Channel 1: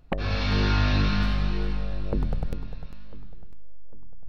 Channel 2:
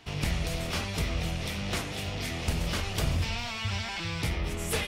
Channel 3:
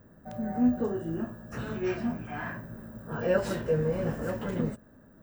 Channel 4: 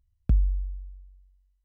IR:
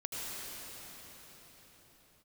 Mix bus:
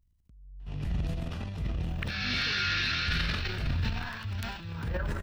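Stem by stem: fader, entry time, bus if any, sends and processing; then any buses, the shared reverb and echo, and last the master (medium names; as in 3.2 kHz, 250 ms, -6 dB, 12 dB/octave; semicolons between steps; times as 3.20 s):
+2.5 dB, 1.90 s, no send, steep high-pass 1.4 kHz 48 dB/octave
-12.5 dB, 0.60 s, no send, tone controls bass +11 dB, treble -11 dB; band-stop 2.2 kHz, Q 7
-19.0 dB, 1.65 s, no send, high-order bell 1.4 kHz +12.5 dB
-10.0 dB, 0.00 s, no send, compressor with a negative ratio -34 dBFS, ratio -1; peak limiter -29 dBFS, peak gain reduction 5 dB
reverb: none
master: transient shaper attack -3 dB, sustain +11 dB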